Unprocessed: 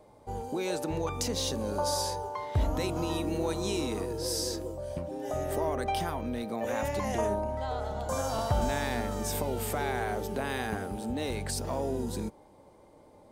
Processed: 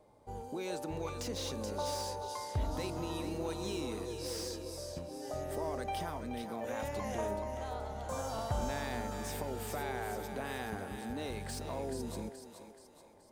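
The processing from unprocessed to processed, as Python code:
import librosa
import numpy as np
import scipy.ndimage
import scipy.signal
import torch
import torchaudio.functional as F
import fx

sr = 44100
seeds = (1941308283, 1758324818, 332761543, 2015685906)

y = fx.echo_thinned(x, sr, ms=427, feedback_pct=48, hz=420.0, wet_db=-8.0)
y = fx.slew_limit(y, sr, full_power_hz=130.0)
y = y * 10.0 ** (-7.0 / 20.0)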